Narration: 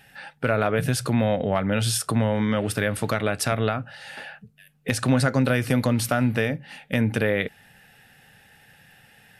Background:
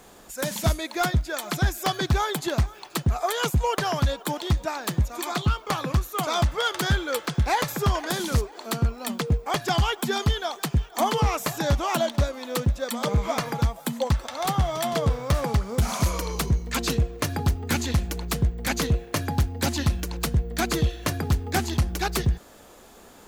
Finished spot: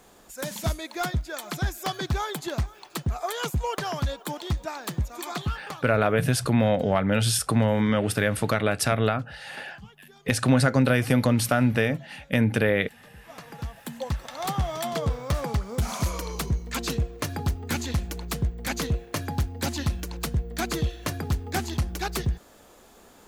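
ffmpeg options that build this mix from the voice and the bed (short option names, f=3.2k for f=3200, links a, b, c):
-filter_complex "[0:a]adelay=5400,volume=0.5dB[a];[1:a]volume=20dB,afade=t=out:st=5.38:d=0.6:silence=0.0668344,afade=t=in:st=13.17:d=1.32:silence=0.0595662[b];[a][b]amix=inputs=2:normalize=0"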